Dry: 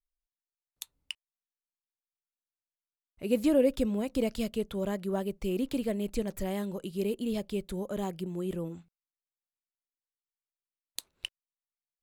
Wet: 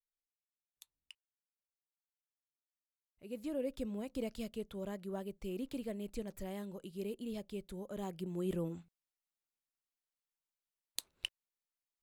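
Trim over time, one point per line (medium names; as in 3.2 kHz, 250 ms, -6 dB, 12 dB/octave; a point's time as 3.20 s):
3.32 s -17 dB
3.95 s -10 dB
7.86 s -10 dB
8.52 s -2 dB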